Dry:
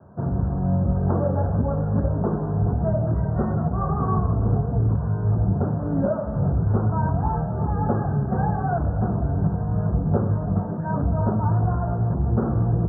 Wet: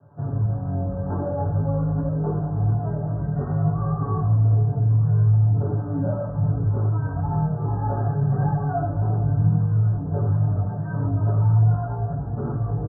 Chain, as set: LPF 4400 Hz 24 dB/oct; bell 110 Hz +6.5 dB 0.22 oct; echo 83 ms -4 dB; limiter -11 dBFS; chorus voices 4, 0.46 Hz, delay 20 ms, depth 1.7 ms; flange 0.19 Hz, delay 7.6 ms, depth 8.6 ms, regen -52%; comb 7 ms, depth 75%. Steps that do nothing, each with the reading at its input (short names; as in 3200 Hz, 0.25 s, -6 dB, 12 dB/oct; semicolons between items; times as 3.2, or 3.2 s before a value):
LPF 4400 Hz: input band ends at 1200 Hz